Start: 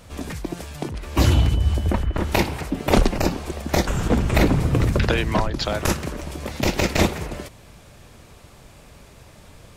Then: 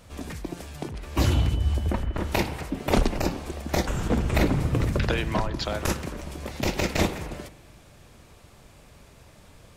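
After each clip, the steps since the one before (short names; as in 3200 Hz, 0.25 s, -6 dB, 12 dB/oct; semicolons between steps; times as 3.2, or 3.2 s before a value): spring tank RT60 1.2 s, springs 42 ms, chirp 60 ms, DRR 14.5 dB; gain -5 dB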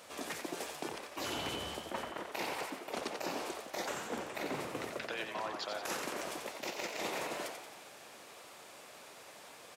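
HPF 440 Hz 12 dB/oct; reverse; compressor 16:1, threshold -38 dBFS, peak gain reduction 20 dB; reverse; frequency-shifting echo 89 ms, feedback 53%, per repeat +82 Hz, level -6.5 dB; gain +2 dB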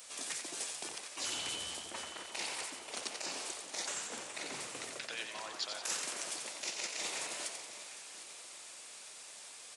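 downsampling 22050 Hz; pre-emphasis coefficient 0.9; echo with dull and thin repeats by turns 0.377 s, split 1000 Hz, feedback 65%, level -10 dB; gain +9 dB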